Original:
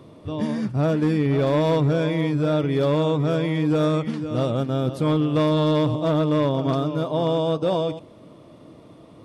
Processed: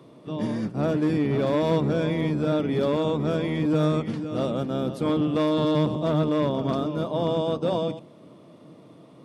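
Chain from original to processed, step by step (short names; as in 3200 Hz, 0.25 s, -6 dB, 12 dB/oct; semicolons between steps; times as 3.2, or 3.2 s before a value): octaver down 1 oct, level +2 dB; HPF 150 Hz 24 dB/oct; gain -3 dB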